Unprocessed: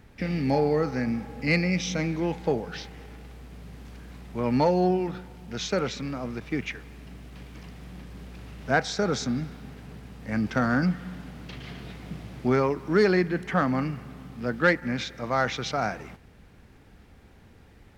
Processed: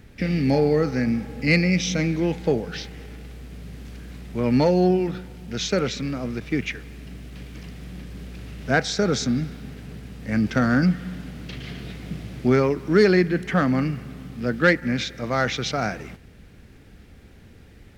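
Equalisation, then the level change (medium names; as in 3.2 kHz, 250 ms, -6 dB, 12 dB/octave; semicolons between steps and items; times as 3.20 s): peaking EQ 930 Hz -8 dB 1 oct; +5.5 dB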